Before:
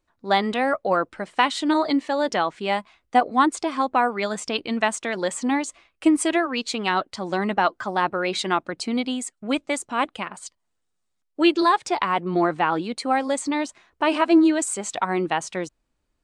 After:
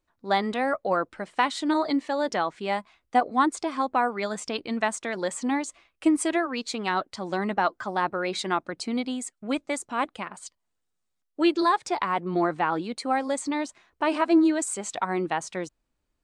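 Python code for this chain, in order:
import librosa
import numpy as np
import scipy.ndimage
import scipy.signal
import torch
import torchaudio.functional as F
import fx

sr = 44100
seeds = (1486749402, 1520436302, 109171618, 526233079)

y = fx.dynamic_eq(x, sr, hz=2900.0, q=3.1, threshold_db=-42.0, ratio=4.0, max_db=-5)
y = F.gain(torch.from_numpy(y), -3.5).numpy()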